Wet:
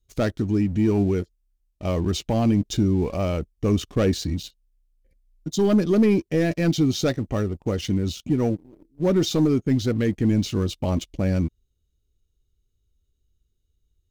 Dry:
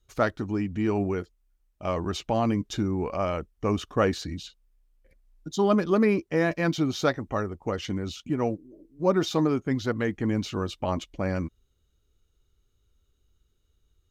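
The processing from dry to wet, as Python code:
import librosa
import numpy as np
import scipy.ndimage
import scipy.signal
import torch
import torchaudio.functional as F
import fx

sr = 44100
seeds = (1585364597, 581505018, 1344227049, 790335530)

y = fx.low_shelf(x, sr, hz=140.0, db=3.0)
y = fx.leveller(y, sr, passes=2)
y = fx.peak_eq(y, sr, hz=1200.0, db=-11.5, octaves=2.0)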